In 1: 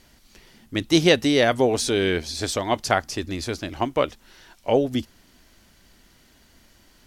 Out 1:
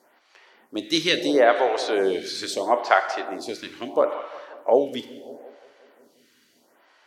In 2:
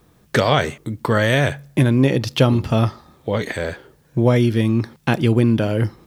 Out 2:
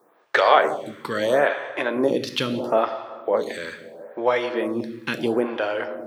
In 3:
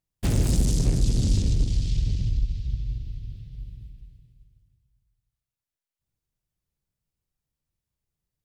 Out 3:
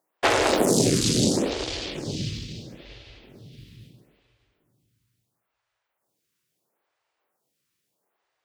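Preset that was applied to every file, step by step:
high-pass filter 510 Hz 12 dB per octave
high-shelf EQ 2,800 Hz −11.5 dB
feedback echo with a low-pass in the loop 178 ms, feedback 67%, low-pass 1,000 Hz, level −12.5 dB
dynamic equaliser 4,000 Hz, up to +5 dB, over −52 dBFS, Q 4.5
dense smooth reverb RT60 1.4 s, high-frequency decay 0.75×, DRR 8.5 dB
phaser with staggered stages 0.75 Hz
loudness normalisation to −23 LKFS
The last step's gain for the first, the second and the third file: +6.0, +5.5, +22.5 decibels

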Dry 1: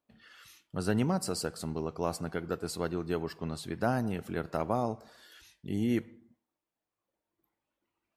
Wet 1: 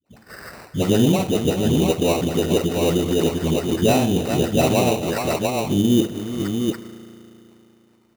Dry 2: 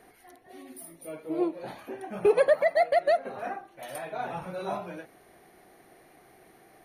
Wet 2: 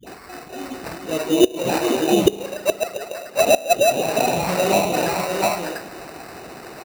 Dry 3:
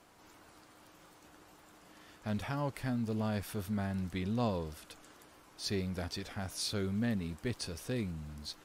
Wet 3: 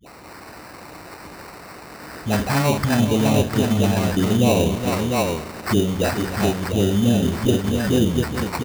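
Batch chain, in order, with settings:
running median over 5 samples
all-pass dispersion highs, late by 75 ms, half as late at 560 Hz
on a send: multi-tap delay 50/418/698 ms −7.5/−10.5/−5 dB
on the sum: gate with flip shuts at −16 dBFS, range −28 dB
spring reverb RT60 3.1 s, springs 35 ms, chirp 55 ms, DRR 14.5 dB
harmonic and percussive parts rebalanced harmonic −8 dB
high-shelf EQ 2,400 Hz +5 dB
in parallel at −5.5 dB: wave folding −26.5 dBFS
on the sum: treble cut that deepens with the level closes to 610 Hz, closed at −29.5 dBFS
sample-rate reduction 3,300 Hz, jitter 0%
high-pass filter 44 Hz
loudness normalisation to −20 LKFS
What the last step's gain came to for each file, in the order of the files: +14.0, +17.0, +18.0 decibels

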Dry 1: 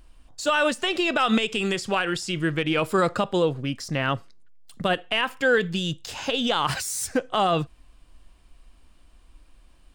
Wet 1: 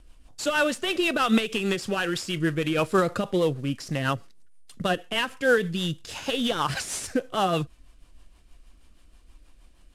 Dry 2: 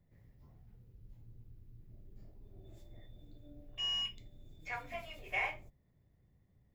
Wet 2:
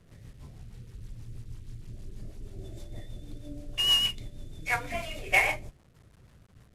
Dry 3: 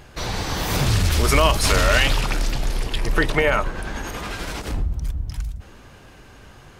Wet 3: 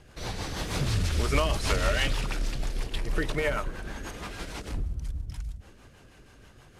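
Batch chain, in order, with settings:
variable-slope delta modulation 64 kbit/s
rotating-speaker cabinet horn 6.3 Hz
normalise the peak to −9 dBFS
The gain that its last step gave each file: +1.0, +14.5, −6.0 decibels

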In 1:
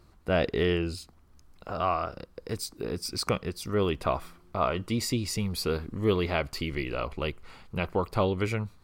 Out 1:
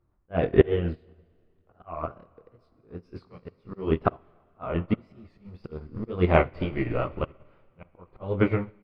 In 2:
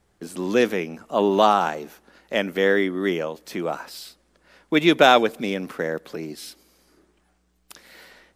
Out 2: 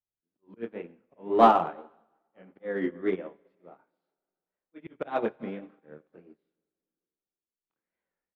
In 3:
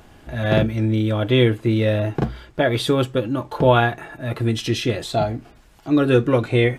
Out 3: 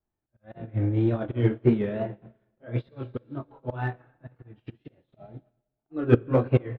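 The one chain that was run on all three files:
chorus effect 0.61 Hz, depth 2.7 ms
high-frequency loss of the air 420 metres
tape wow and flutter 110 cents
far-end echo of a speakerphone 270 ms, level −26 dB
volume swells 256 ms
high-shelf EQ 3,500 Hz −11 dB
dense smooth reverb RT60 2.5 s, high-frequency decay 0.95×, DRR 9 dB
in parallel at −8 dB: hard clipping −20 dBFS
on the sum: expander for the loud parts 2.5 to 1, over −44 dBFS
loudness normalisation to −27 LKFS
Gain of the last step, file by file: +15.5, +4.0, +4.0 decibels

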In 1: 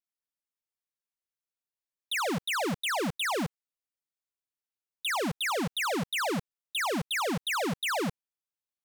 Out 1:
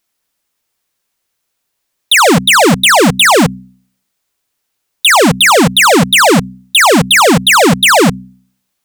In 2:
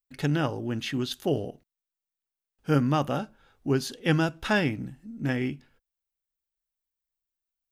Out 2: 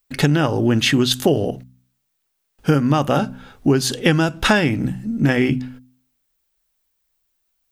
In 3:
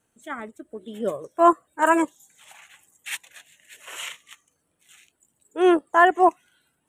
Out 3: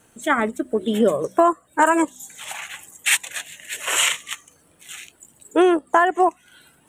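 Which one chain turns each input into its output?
hum removal 63.42 Hz, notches 4
dynamic equaliser 8,000 Hz, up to +5 dB, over −53 dBFS, Q 2.4
downward compressor 12 to 1, threshold −29 dBFS
normalise the peak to −2 dBFS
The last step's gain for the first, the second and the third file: +24.5, +17.0, +16.0 decibels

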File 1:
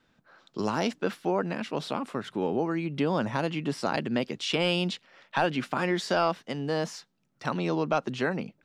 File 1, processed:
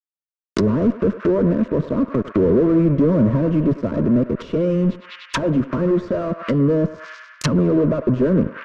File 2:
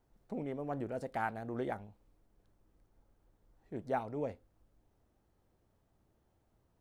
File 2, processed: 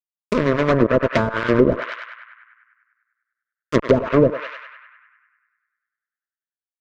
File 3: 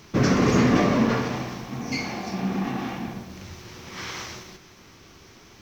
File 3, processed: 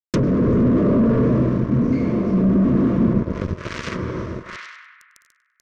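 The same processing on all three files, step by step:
fuzz pedal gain 38 dB, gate −38 dBFS
parametric band 6,600 Hz +10 dB 1.2 octaves
automatic gain control gain up to 8 dB
Butterworth band-reject 790 Hz, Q 2.6
on a send: feedback echo with a band-pass in the loop 99 ms, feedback 68%, band-pass 1,600 Hz, level −7.5 dB
on the sum: treble cut that deepens with the level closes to 540 Hz, closed at −12 dBFS
loudness normalisation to −19 LKFS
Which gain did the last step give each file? −2.0, +3.5, −2.0 decibels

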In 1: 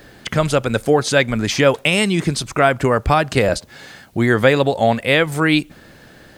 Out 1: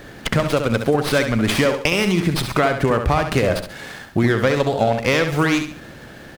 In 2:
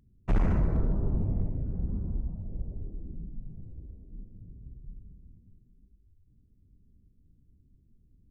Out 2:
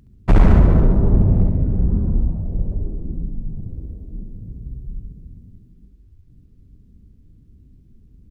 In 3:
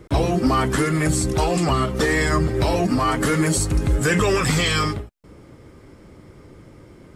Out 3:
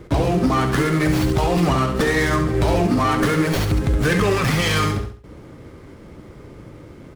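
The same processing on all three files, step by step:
downward compressor, threshold −19 dBFS
on a send: repeating echo 68 ms, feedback 36%, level −7.5 dB
on the sum: windowed peak hold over 5 samples
loudness normalisation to −19 LKFS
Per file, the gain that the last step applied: +4.5, +13.5, +4.0 decibels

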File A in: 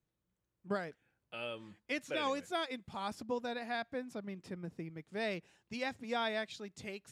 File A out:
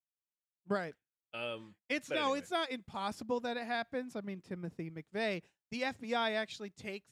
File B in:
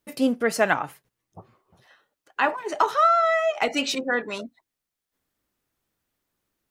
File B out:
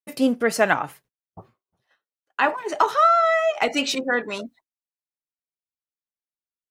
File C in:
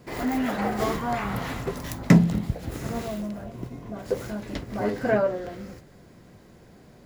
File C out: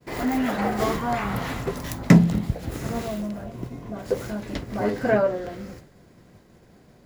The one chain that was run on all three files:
downward expander −46 dBFS
level +2 dB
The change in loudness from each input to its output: +2.0, +2.0, +2.0 LU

